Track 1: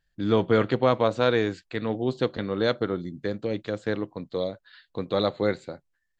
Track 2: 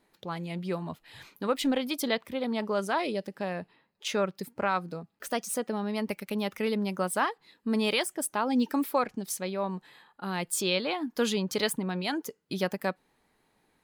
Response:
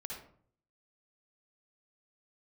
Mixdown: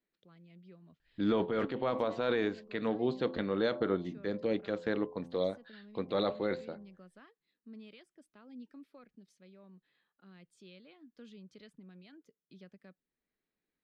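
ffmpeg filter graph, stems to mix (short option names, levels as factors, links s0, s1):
-filter_complex "[0:a]bandreject=f=85.97:t=h:w=4,bandreject=f=171.94:t=h:w=4,bandreject=f=257.91:t=h:w=4,bandreject=f=343.88:t=h:w=4,bandreject=f=429.85:t=h:w=4,bandreject=f=515.82:t=h:w=4,bandreject=f=601.79:t=h:w=4,bandreject=f=687.76:t=h:w=4,bandreject=f=773.73:t=h:w=4,bandreject=f=859.7:t=h:w=4,bandreject=f=945.67:t=h:w=4,bandreject=f=1031.64:t=h:w=4,bandreject=f=1117.61:t=h:w=4,alimiter=limit=0.141:level=0:latency=1:release=21,adelay=1000,volume=0.794[s0];[1:a]equalizer=f=880:t=o:w=0.64:g=-12.5,acrossover=split=250[s1][s2];[s2]acompressor=threshold=0.00251:ratio=1.5[s3];[s1][s3]amix=inputs=2:normalize=0,volume=0.119,asplit=2[s4][s5];[s5]apad=whole_len=317488[s6];[s0][s6]sidechaincompress=threshold=0.00251:ratio=8:attack=16:release=248[s7];[s7][s4]amix=inputs=2:normalize=0,lowpass=4200,equalizer=f=110:t=o:w=0.45:g=-11.5"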